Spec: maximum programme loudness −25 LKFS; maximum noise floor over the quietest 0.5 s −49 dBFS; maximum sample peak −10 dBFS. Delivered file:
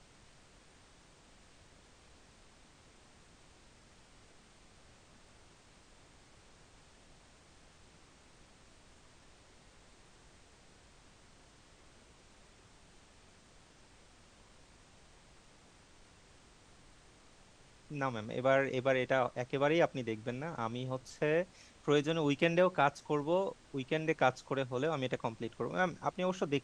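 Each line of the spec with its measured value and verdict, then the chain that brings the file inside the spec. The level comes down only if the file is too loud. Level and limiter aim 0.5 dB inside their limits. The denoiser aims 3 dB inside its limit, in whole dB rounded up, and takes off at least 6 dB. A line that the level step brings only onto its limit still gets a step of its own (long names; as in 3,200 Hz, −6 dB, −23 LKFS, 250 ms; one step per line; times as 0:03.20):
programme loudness −34.0 LKFS: in spec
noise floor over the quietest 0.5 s −61 dBFS: in spec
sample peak −13.5 dBFS: in spec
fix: no processing needed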